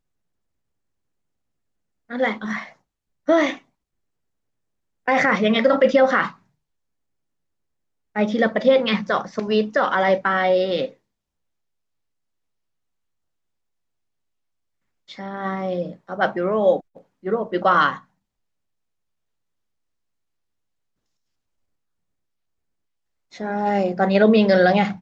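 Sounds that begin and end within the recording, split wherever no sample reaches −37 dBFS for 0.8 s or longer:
0:02.10–0:03.58
0:05.08–0:06.32
0:08.16–0:10.91
0:15.09–0:17.99

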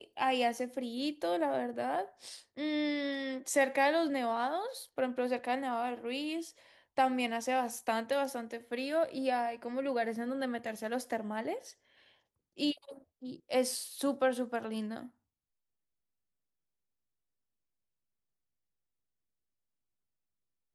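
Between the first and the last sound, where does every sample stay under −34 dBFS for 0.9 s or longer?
0:11.56–0:12.60

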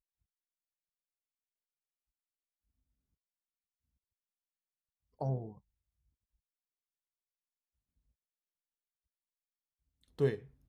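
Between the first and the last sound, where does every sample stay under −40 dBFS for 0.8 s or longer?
0:05.50–0:10.19

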